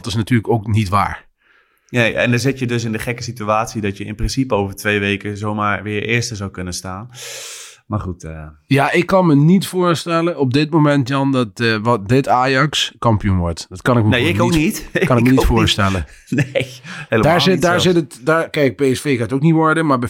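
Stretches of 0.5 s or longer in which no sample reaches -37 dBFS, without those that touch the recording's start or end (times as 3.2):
1.21–1.89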